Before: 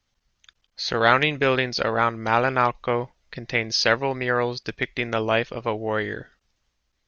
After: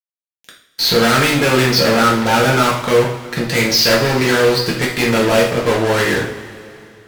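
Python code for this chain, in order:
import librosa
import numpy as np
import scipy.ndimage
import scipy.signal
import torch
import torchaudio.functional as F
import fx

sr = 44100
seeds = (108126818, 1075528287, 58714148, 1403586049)

y = fx.fuzz(x, sr, gain_db=33.0, gate_db=-39.0)
y = fx.rev_double_slope(y, sr, seeds[0], early_s=0.49, late_s=2.9, knee_db=-18, drr_db=-4.0)
y = F.gain(torch.from_numpy(y), -3.0).numpy()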